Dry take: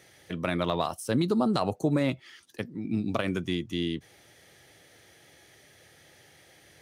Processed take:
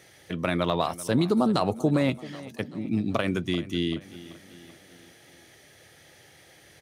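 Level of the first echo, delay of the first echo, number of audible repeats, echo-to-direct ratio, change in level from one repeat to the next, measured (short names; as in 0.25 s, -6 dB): -17.5 dB, 0.386 s, 4, -16.0 dB, -5.5 dB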